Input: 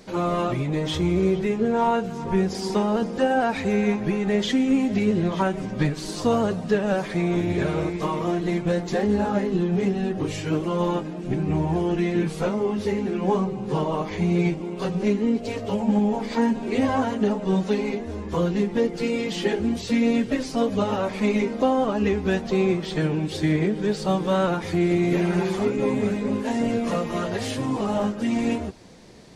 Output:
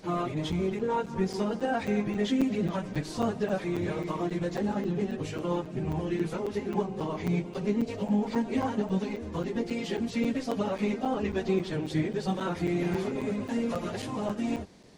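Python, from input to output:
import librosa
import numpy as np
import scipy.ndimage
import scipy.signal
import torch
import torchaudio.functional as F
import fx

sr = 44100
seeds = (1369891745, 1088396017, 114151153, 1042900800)

y = fx.stretch_vocoder_free(x, sr, factor=0.51)
y = fx.buffer_crackle(y, sr, first_s=0.52, period_s=0.27, block=256, kind='zero')
y = y * 10.0 ** (-3.5 / 20.0)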